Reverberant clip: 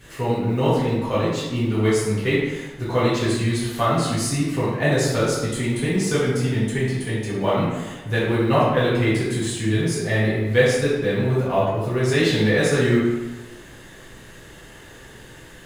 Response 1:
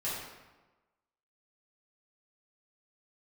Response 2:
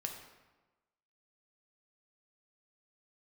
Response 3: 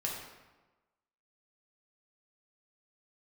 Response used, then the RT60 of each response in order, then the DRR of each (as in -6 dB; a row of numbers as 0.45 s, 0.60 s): 1; 1.2 s, 1.2 s, 1.2 s; -10.5 dB, 2.0 dB, -3.0 dB